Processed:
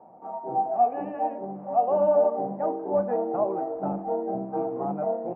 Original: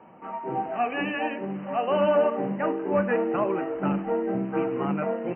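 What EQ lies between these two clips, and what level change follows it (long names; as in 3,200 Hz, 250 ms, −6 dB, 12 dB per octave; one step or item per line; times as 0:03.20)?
low-pass with resonance 740 Hz, resonance Q 4.2
−6.5 dB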